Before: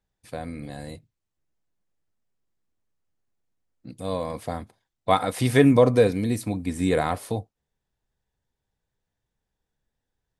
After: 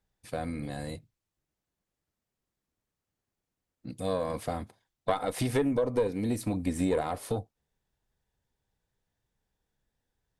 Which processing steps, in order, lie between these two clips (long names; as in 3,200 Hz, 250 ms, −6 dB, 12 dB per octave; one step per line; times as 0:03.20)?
dynamic equaliser 450 Hz, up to +6 dB, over −29 dBFS, Q 0.74
downward compressor 6 to 1, threshold −25 dBFS, peak gain reduction 17.5 dB
tube saturation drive 17 dB, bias 0.6
level +3.5 dB